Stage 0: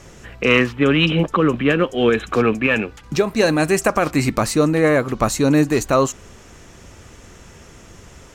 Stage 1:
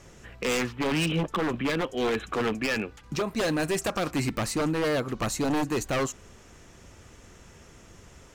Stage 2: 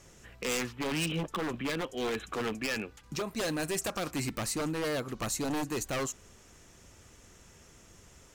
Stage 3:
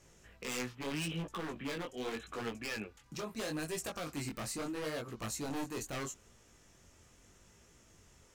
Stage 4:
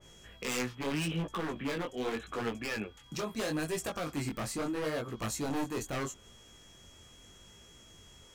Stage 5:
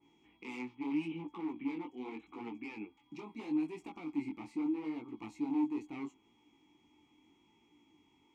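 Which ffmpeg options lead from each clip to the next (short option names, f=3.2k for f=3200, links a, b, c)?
-af "aeval=exprs='0.237*(abs(mod(val(0)/0.237+3,4)-2)-1)':c=same,volume=-8dB"
-af "highshelf=f=5k:g=8.5,volume=-6.5dB"
-af "flanger=delay=17:depth=6.9:speed=0.78,volume=-3.5dB"
-af "aeval=exprs='val(0)+0.000708*sin(2*PI*3300*n/s)':c=same,adynamicequalizer=threshold=0.002:dfrequency=2300:dqfactor=0.7:tfrequency=2300:tqfactor=0.7:attack=5:release=100:ratio=0.375:range=2.5:mode=cutabove:tftype=highshelf,volume=5dB"
-filter_complex "[0:a]asplit=3[a][b][c];[a]bandpass=f=300:t=q:w=8,volume=0dB[d];[b]bandpass=f=870:t=q:w=8,volume=-6dB[e];[c]bandpass=f=2.24k:t=q:w=8,volume=-9dB[f];[d][e][f]amix=inputs=3:normalize=0,volume=4.5dB"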